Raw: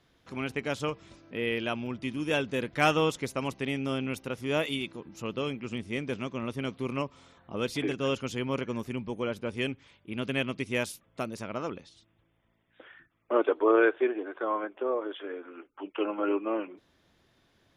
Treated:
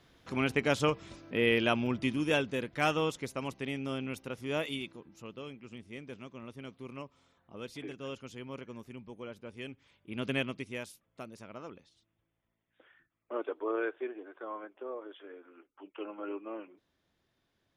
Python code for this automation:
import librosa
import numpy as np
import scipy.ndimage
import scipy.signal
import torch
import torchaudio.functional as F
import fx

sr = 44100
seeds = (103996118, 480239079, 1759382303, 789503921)

y = fx.gain(x, sr, db=fx.line((2.01, 3.5), (2.7, -5.0), (4.79, -5.0), (5.36, -12.0), (9.64, -12.0), (10.32, -1.0), (10.81, -11.0)))